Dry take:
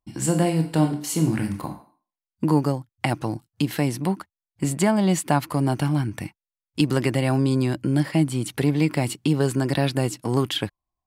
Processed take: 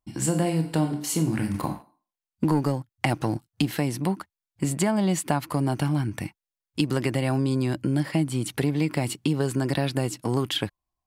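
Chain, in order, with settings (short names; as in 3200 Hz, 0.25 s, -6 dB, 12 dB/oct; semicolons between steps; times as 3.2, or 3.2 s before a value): 1.54–3.71 sample leveller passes 1; compressor 2.5:1, threshold -21 dBFS, peak gain reduction 6.5 dB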